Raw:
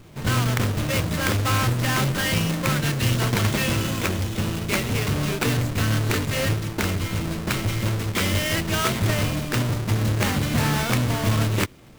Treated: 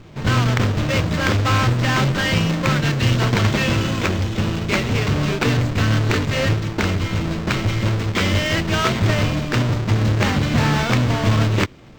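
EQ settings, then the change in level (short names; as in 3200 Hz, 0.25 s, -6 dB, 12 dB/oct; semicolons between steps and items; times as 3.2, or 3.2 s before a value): running mean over 4 samples; +4.5 dB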